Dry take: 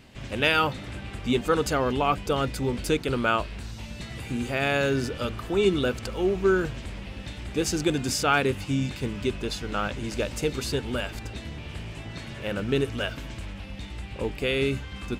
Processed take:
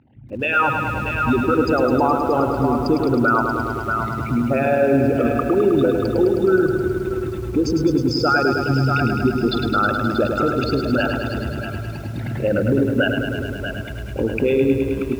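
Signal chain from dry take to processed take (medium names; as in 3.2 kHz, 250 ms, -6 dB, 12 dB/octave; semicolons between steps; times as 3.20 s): resonances exaggerated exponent 3; compression 3:1, threshold -30 dBFS, peak gain reduction 10.5 dB; cabinet simulation 140–4000 Hz, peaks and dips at 180 Hz -10 dB, 420 Hz -6 dB, 850 Hz +8 dB, 1.4 kHz +5 dB, 2.9 kHz -5 dB; on a send: thinning echo 633 ms, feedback 33%, high-pass 410 Hz, level -12 dB; on the sum: level rider gain up to 15 dB; peak limiter -12.5 dBFS, peak gain reduction 9.5 dB; bit-crushed delay 105 ms, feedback 80%, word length 8-bit, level -6 dB; trim +2.5 dB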